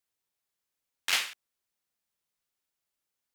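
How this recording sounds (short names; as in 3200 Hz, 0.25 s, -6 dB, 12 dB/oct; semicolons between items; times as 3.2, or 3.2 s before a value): noise floor -86 dBFS; spectral tilt +1.0 dB/oct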